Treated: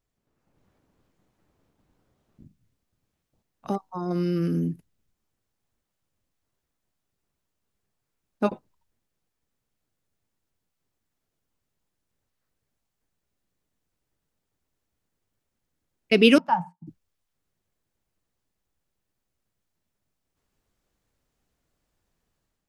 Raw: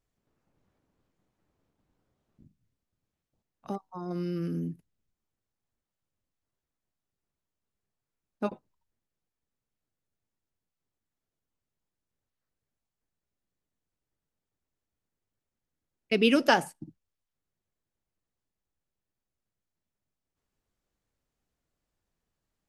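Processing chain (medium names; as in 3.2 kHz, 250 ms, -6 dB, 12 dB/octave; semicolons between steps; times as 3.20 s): 16.38–16.87 s: two resonant band-passes 400 Hz, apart 2.4 oct; level rider gain up to 7 dB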